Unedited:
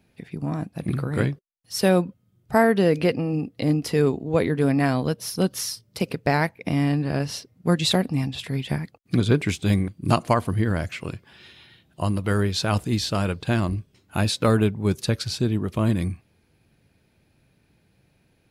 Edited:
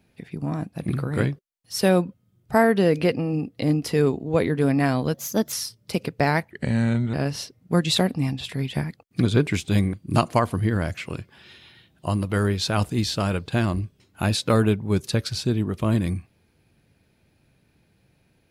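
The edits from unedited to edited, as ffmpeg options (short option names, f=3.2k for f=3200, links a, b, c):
-filter_complex "[0:a]asplit=5[a][b][c][d][e];[a]atrim=end=5.144[f];[b]atrim=start=5.14:end=5.59,asetpts=PTS-STARTPTS,asetrate=51597,aresample=44100[g];[c]atrim=start=5.586:end=6.574[h];[d]atrim=start=6.57:end=7.08,asetpts=PTS-STARTPTS,asetrate=35721,aresample=44100[i];[e]atrim=start=7.076[j];[f][g]acrossfade=d=0.004:c1=hsin:c2=hsin[k];[k][h]acrossfade=d=0.004:c1=hsin:c2=hsin[l];[l][i]acrossfade=d=0.004:c1=hsin:c2=hsin[m];[m][j]acrossfade=d=0.004:c1=hsin:c2=hsin"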